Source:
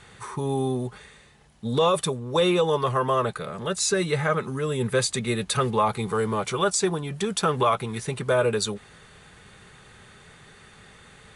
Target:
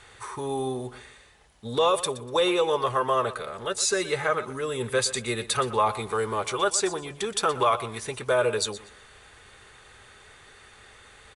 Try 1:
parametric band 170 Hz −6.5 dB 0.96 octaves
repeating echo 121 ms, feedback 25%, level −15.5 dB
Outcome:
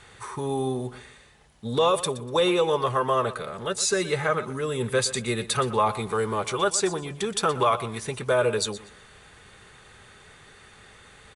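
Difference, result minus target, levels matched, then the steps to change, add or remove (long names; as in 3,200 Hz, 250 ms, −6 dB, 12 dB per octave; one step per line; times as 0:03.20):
125 Hz band +4.5 dB
change: parametric band 170 Hz −15.5 dB 0.96 octaves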